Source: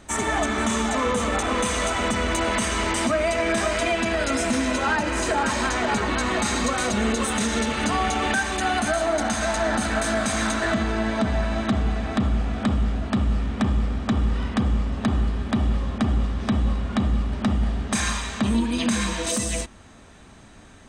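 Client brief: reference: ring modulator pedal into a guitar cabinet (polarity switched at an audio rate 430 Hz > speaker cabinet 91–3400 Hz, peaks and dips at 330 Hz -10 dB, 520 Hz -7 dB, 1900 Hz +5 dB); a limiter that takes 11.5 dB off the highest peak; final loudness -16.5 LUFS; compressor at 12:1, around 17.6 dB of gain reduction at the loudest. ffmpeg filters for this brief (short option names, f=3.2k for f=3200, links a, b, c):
-af "acompressor=threshold=-36dB:ratio=12,alimiter=level_in=9.5dB:limit=-24dB:level=0:latency=1,volume=-9.5dB,aeval=exprs='val(0)*sgn(sin(2*PI*430*n/s))':c=same,highpass=91,equalizer=f=330:t=q:w=4:g=-10,equalizer=f=520:t=q:w=4:g=-7,equalizer=f=1.9k:t=q:w=4:g=5,lowpass=f=3.4k:w=0.5412,lowpass=f=3.4k:w=1.3066,volume=26dB"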